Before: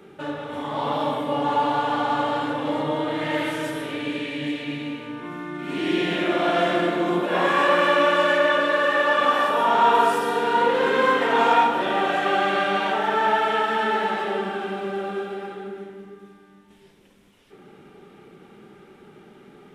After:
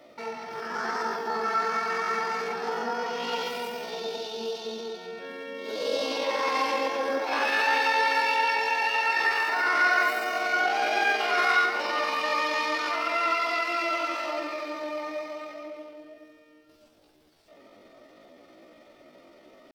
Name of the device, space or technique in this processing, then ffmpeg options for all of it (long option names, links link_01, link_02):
chipmunk voice: -af "asetrate=68011,aresample=44100,atempo=0.64842,volume=-5dB"